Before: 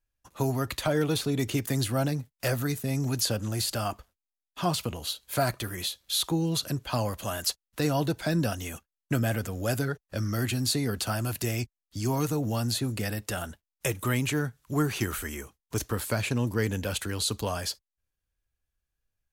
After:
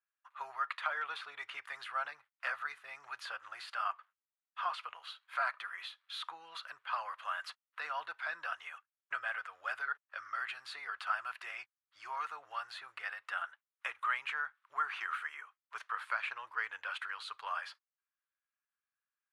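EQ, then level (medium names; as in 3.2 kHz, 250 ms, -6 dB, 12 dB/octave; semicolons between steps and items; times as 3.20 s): elliptic band-pass 1.2–9.7 kHz, stop band 60 dB; distance through air 370 m; peaking EQ 4.5 kHz -12.5 dB 2.1 oct; +8.0 dB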